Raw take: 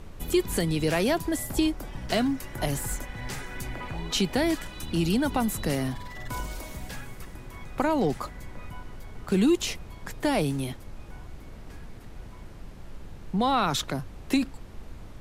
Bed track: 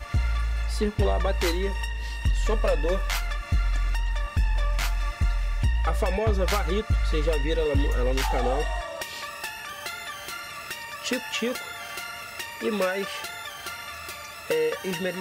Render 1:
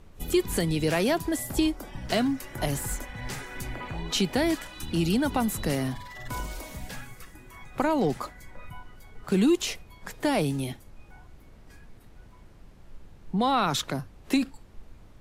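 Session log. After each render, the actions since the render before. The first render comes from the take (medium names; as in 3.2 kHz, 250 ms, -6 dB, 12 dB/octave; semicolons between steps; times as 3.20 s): noise print and reduce 8 dB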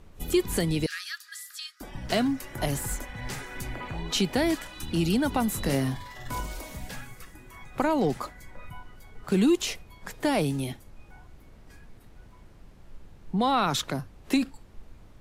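0.86–1.81 s: rippled Chebyshev high-pass 1.2 kHz, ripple 9 dB; 5.50–6.40 s: doubling 22 ms -7 dB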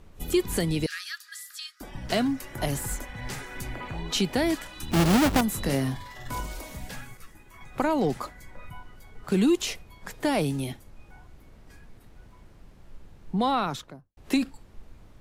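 4.91–5.41 s: square wave that keeps the level; 7.17–7.61 s: three-phase chorus; 13.41–14.17 s: studio fade out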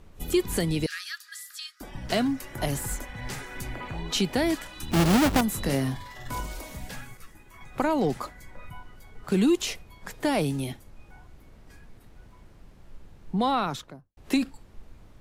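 no audible change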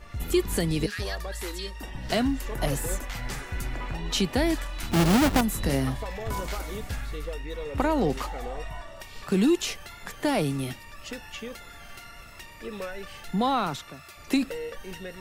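add bed track -10.5 dB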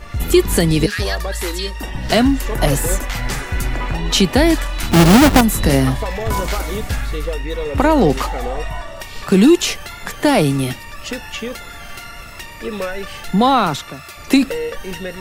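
trim +11.5 dB; peak limiter -1 dBFS, peak gain reduction 2.5 dB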